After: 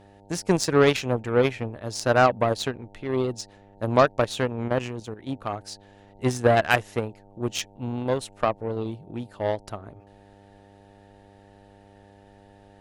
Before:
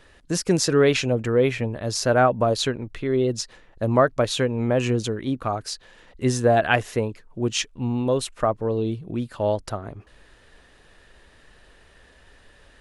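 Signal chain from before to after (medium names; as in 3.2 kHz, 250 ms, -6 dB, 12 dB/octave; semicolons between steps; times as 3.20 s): mains buzz 100 Hz, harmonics 9, -44 dBFS -2 dB/octave; Chebyshev shaper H 7 -21 dB, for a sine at -4.5 dBFS; 4.68–5.29 s: level held to a coarse grid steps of 11 dB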